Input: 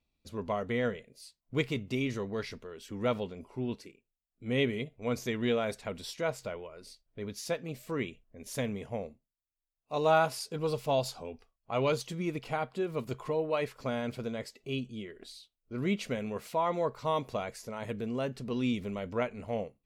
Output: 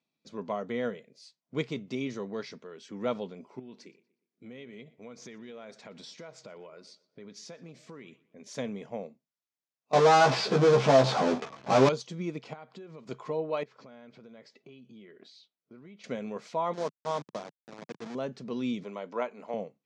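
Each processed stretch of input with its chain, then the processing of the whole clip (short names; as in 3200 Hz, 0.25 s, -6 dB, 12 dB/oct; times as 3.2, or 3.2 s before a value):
3.59–8.44 compressor 10:1, threshold -41 dBFS + darkening echo 0.12 s, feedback 42%, low-pass 4200 Hz, level -20 dB
9.93–11.89 LPF 2900 Hz 24 dB/oct + power-law curve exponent 0.35 + doubler 15 ms -3.5 dB
12.53–13.07 steep low-pass 8200 Hz + compressor 16:1, threshold -41 dBFS
13.63–16.04 compressor 16:1, threshold -45 dBFS + air absorption 100 m
16.73–18.15 level-crossing sampler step -31 dBFS + high shelf 9200 Hz -6.5 dB + upward expander, over -40 dBFS
18.83–19.54 HPF 290 Hz + bell 980 Hz +5.5 dB 0.5 oct + notch 7800 Hz, Q 24
whole clip: dynamic EQ 2000 Hz, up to -4 dB, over -48 dBFS, Q 1.4; Chebyshev band-pass 160–6400 Hz, order 3; notch 2800 Hz, Q 15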